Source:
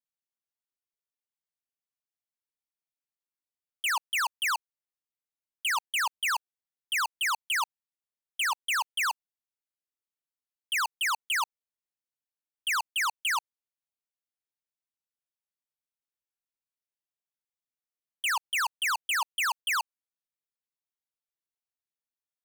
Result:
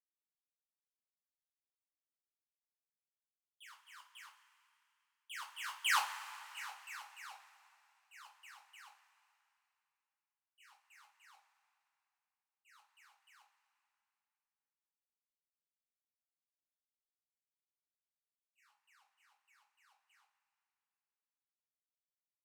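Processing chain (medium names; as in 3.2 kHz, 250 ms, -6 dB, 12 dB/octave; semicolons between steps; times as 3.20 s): sawtooth pitch modulation -1.5 st, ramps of 425 ms; Doppler pass-by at 6.02 s, 21 m/s, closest 1.4 m; two-slope reverb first 0.26 s, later 2.7 s, from -18 dB, DRR -2 dB; trim -1 dB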